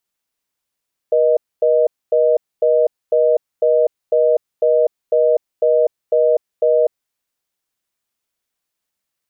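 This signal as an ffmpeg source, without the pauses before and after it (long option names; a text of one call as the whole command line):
ffmpeg -f lavfi -i "aevalsrc='0.211*(sin(2*PI*480*t)+sin(2*PI*620*t))*clip(min(mod(t,0.5),0.25-mod(t,0.5))/0.005,0,1)':duration=6:sample_rate=44100" out.wav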